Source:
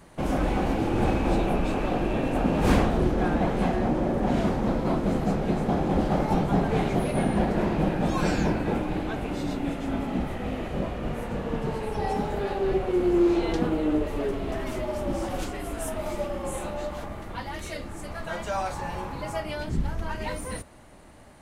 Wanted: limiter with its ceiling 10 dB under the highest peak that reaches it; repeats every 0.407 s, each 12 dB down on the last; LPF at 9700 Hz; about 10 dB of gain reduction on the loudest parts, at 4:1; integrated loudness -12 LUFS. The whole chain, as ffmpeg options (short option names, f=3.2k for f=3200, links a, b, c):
-af "lowpass=9.7k,acompressor=threshold=-29dB:ratio=4,alimiter=level_in=4.5dB:limit=-24dB:level=0:latency=1,volume=-4.5dB,aecho=1:1:407|814|1221:0.251|0.0628|0.0157,volume=25.5dB"